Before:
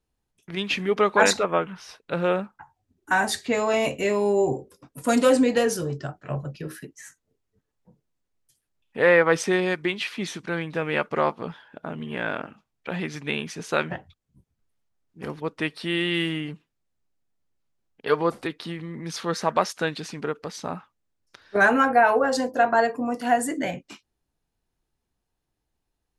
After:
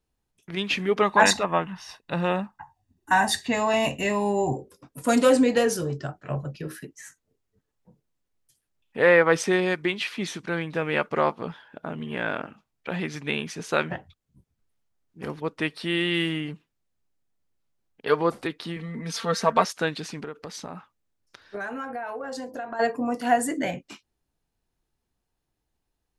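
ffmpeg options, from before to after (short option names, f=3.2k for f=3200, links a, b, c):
-filter_complex "[0:a]asettb=1/sr,asplit=3[a][b][c];[a]atrim=end=1.024[d];[b]atrim=start=1.02:end=4.56,asetpts=PTS-STARTPTS,afade=t=in:d=0.004:c=qsin,afade=t=out:st=3.536:d=0.004:c=qsin,aecho=1:1:1.1:0.55,atrim=end_sample=156114[e];[c]atrim=start=4.556[f];[d][e]acrossfade=d=0.004:c1=hsin:c2=qsin[g];[g][f]acrossfade=d=0.004:c1=qsin:c2=hsin,asettb=1/sr,asplit=3[h][i][j];[h]atrim=end=18.764[k];[i]atrim=start=18.76:end=19.65,asetpts=PTS-STARTPTS,afade=t=in:d=0.004:c=qsin,afade=t=out:st=0.886:d=0.004:c=qsin,aecho=1:1:4.4:0.75,atrim=end_sample=39249[l];[j]atrim=start=19.646[m];[k][l]acrossfade=d=0.004:c1=hsin:c2=qsin[n];[n][m]acrossfade=d=0.004:c1=qsin:c2=hsin,asplit=3[o][p][q];[o]afade=t=out:st=20.21:d=0.02[r];[p]acompressor=threshold=-32dB:ratio=5:attack=3.2:release=140:knee=1:detection=peak,afade=t=in:st=20.21:d=0.02,afade=t=out:st=22.79:d=0.02[s];[q]afade=t=in:st=22.79:d=0.02[t];[r][s][t]amix=inputs=3:normalize=0"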